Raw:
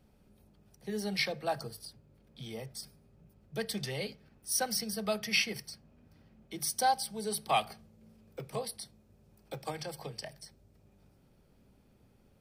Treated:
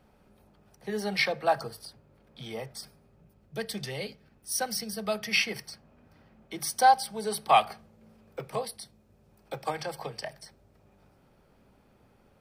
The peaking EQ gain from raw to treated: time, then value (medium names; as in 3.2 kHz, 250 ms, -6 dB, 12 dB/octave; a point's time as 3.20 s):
peaking EQ 1.1 kHz 2.7 oct
2.82 s +10 dB
3.55 s +2.5 dB
5.04 s +2.5 dB
5.64 s +9.5 dB
8.47 s +9.5 dB
8.81 s +2.5 dB
9.75 s +9.5 dB